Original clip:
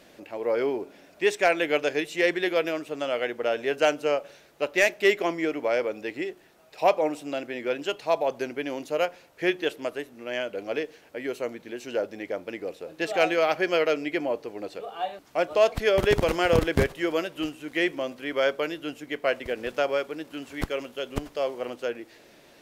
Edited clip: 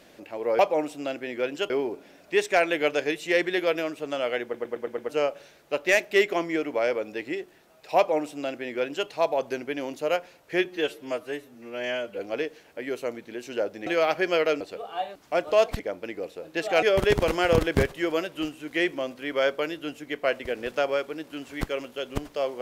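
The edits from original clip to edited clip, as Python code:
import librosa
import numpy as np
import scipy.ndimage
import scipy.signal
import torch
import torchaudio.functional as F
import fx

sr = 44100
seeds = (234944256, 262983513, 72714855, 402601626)

y = fx.edit(x, sr, fx.stutter_over(start_s=3.32, slice_s=0.11, count=6),
    fx.duplicate(start_s=6.86, length_s=1.11, to_s=0.59),
    fx.stretch_span(start_s=9.54, length_s=1.03, factor=1.5),
    fx.move(start_s=12.24, length_s=1.03, to_s=15.83),
    fx.cut(start_s=14.01, length_s=0.63), tone=tone)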